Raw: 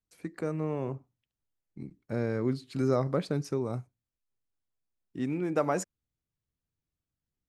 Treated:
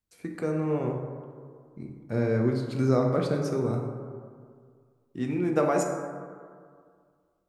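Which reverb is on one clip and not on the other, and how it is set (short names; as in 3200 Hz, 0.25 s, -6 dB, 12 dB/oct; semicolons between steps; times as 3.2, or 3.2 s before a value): plate-style reverb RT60 2 s, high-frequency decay 0.35×, DRR 1.5 dB; gain +1.5 dB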